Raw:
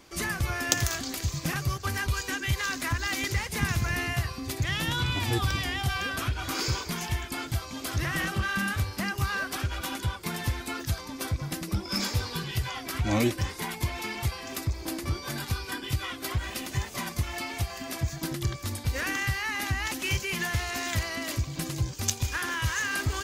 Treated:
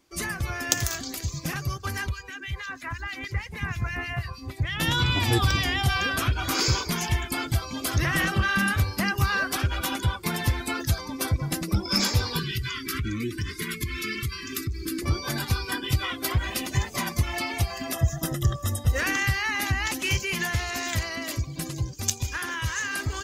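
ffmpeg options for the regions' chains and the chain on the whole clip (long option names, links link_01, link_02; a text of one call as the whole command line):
ffmpeg -i in.wav -filter_complex "[0:a]asettb=1/sr,asplit=3[link_01][link_02][link_03];[link_01]atrim=end=2.094[link_04];[link_02]atrim=start=2.09:end=4.8,asetpts=PTS-STARTPTS,afade=type=in:duration=0.004:curve=qsin,afade=type=out:start_time=2.706:duration=0.004:curve=qsin,acrossover=split=3100[link_05][link_06];[link_06]acompressor=threshold=-42dB:ratio=4:attack=1:release=60[link_07];[link_05][link_07]amix=inputs=2:normalize=0,acrossover=split=2000[link_08][link_09];[link_08]aeval=exprs='val(0)*(1-0.7/2+0.7/2*cos(2*PI*6.3*n/s))':channel_layout=same[link_10];[link_09]aeval=exprs='val(0)*(1-0.7/2-0.7/2*cos(2*PI*6.3*n/s))':channel_layout=same[link_11];[link_10][link_11]amix=inputs=2:normalize=0,equalizer=frequency=290:width=0.74:gain=-5[link_12];[link_03]atrim=start=4.796[link_13];[link_04][link_12]acrossfade=duration=0.004:curve1=hsin:curve2=qsin[link_14];[link_14][link_13]acrossfade=duration=0.004:curve1=qsin:curve2=hsin,asettb=1/sr,asplit=3[link_15][link_16][link_17];[link_15]atrim=end=12.394[link_18];[link_16]atrim=start=12.39:end=15.02,asetpts=PTS-STARTPTS,afade=type=in:duration=0.004:curve=qsin,afade=type=out:start_time=2.626:duration=0.004:curve=qsin,acompressor=threshold=-29dB:ratio=12:attack=3.2:release=140:knee=1:detection=peak,asuperstop=centerf=700:order=8:qfactor=1[link_19];[link_17]atrim=start=15.016[link_20];[link_18][link_19]acrossfade=duration=0.004:curve1=hsin:curve2=qsin[link_21];[link_21][link_20]acrossfade=duration=0.004:curve1=qsin:curve2=hsin,asettb=1/sr,asplit=3[link_22][link_23][link_24];[link_22]atrim=end=17.934[link_25];[link_23]atrim=start=17.93:end=18.99,asetpts=PTS-STARTPTS,afade=type=in:duration=0.004:curve=qsin,afade=type=out:start_time=1.056:duration=0.004:curve=qsin,equalizer=frequency=4400:width=7:gain=-12.5,bandreject=frequency=2300:width=5.3,aecho=1:1:1.6:0.39,atrim=end_sample=46746[link_26];[link_24]atrim=start=18.986[link_27];[link_25][link_26]acrossfade=duration=0.004:curve1=hsin:curve2=qsin[link_28];[link_28][link_27]acrossfade=duration=0.004:curve1=qsin:curve2=hsin,afftdn=noise_reduction=13:noise_floor=-43,highshelf=frequency=6200:gain=5,dynaudnorm=framelen=450:gausssize=13:maxgain=5dB" out.wav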